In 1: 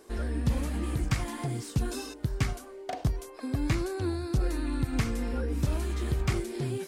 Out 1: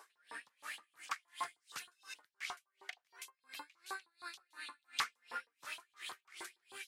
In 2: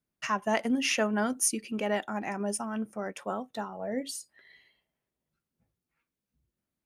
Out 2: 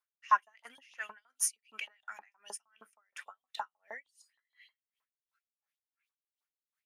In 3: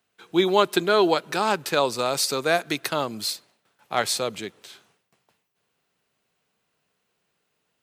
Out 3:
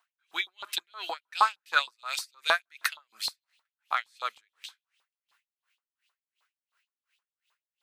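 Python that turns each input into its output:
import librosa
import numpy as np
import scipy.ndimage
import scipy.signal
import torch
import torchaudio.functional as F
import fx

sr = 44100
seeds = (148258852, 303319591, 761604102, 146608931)

y = fx.filter_lfo_highpass(x, sr, shape='saw_up', hz=6.4, low_hz=910.0, high_hz=3800.0, q=4.1)
y = y * 10.0 ** (-39 * (0.5 - 0.5 * np.cos(2.0 * np.pi * 2.8 * np.arange(len(y)) / sr)) / 20.0)
y = y * 10.0 ** (-2.0 / 20.0)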